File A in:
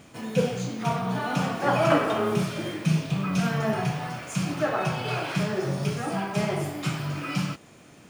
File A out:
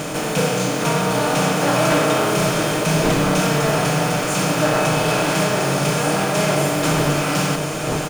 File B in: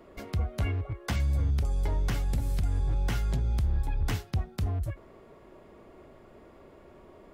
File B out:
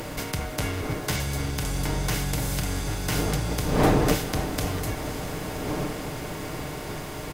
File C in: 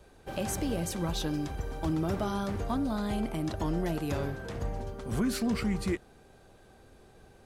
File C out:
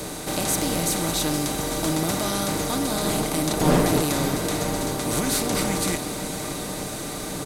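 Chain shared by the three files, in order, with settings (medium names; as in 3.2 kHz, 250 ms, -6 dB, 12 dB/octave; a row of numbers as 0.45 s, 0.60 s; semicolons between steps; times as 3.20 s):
spectral levelling over time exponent 0.4; wind noise 400 Hz -30 dBFS; treble shelf 4.8 kHz +11.5 dB; comb 6.6 ms, depth 45%; wavefolder -9.5 dBFS; bass shelf 130 Hz -6 dB; echo that smears into a reverb 562 ms, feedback 71%, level -11 dB; crackle 170 per s -38 dBFS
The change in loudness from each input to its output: +8.5 LU, +3.0 LU, +8.5 LU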